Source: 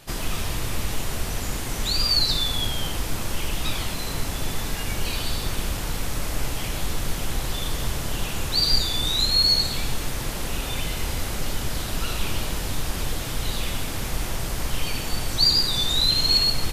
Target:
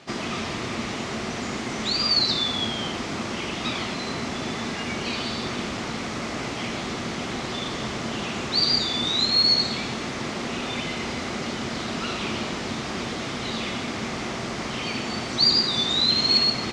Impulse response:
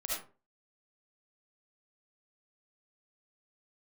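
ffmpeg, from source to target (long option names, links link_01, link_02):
-af "highpass=140,equalizer=frequency=230:width_type=q:width=4:gain=10,equalizer=frequency=370:width_type=q:width=4:gain=6,equalizer=frequency=690:width_type=q:width=4:gain=4,equalizer=frequency=1200:width_type=q:width=4:gain=5,equalizer=frequency=2100:width_type=q:width=4:gain=5,lowpass=frequency=6400:width=0.5412,lowpass=frequency=6400:width=1.3066"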